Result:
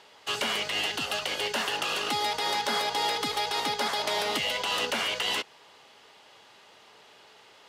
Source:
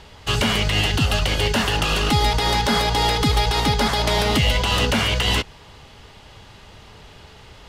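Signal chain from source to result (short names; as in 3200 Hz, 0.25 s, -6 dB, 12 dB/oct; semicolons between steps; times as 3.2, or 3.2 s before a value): HPF 400 Hz 12 dB/oct; gain -7 dB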